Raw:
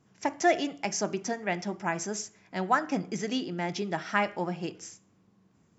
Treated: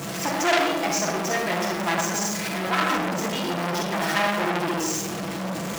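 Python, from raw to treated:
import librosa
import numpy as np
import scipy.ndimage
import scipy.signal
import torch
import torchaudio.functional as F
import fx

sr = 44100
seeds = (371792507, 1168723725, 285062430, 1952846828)

y = x + 0.5 * 10.0 ** (-25.5 / 20.0) * np.sign(x)
y = fx.highpass(y, sr, hz=160.0, slope=6)
y = y + 0.64 * np.pad(y, (int(6.0 * sr / 1000.0), 0))[:len(y)]
y = fx.rev_freeverb(y, sr, rt60_s=1.5, hf_ratio=0.45, predelay_ms=5, drr_db=-2.5)
y = fx.transformer_sat(y, sr, knee_hz=3300.0)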